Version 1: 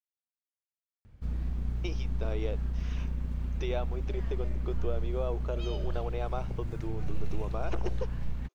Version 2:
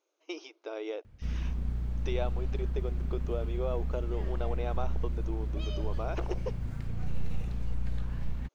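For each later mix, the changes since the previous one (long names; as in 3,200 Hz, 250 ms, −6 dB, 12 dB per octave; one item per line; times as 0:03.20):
speech: entry −1.55 s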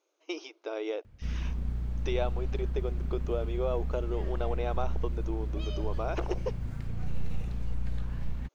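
speech +3.0 dB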